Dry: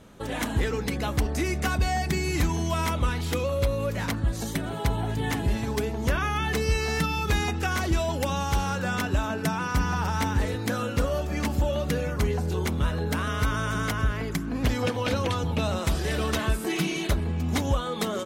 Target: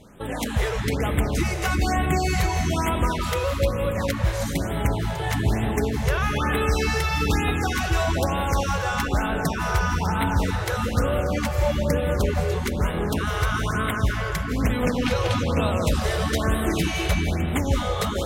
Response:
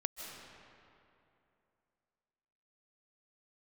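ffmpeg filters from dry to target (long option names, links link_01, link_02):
-filter_complex "[0:a]asettb=1/sr,asplit=3[link_01][link_02][link_03];[link_01]atrim=end=15.984[link_04];[link_02]atrim=start=15.98:end=16.51,asetpts=PTS-STARTPTS,afade=type=in:duration=0.004:curve=qsin,afade=type=out:start_time=0.526:duration=0.004:curve=qsin,bandreject=frequency=2600:width=6.5[link_05];[link_03]atrim=start=16.506[link_06];[link_04][link_05]acrossfade=duration=0.004:curve1=hsin:curve2=qsin[link_07];[link_07][link_06]acrossfade=duration=0.004:curve1=qsin:curve2=hsin[link_08];[1:a]atrim=start_sample=2205,asetrate=41454,aresample=44100[link_09];[link_08][link_09]afir=irnorm=-1:irlink=0,afftfilt=real='re*(1-between(b*sr/1024,220*pow(5800/220,0.5+0.5*sin(2*PI*1.1*pts/sr))/1.41,220*pow(5800/220,0.5+0.5*sin(2*PI*1.1*pts/sr))*1.41))':imag='im*(1-between(b*sr/1024,220*pow(5800/220,0.5+0.5*sin(2*PI*1.1*pts/sr))/1.41,220*pow(5800/220,0.5+0.5*sin(2*PI*1.1*pts/sr))*1.41))':win_size=1024:overlap=0.75,volume=3dB"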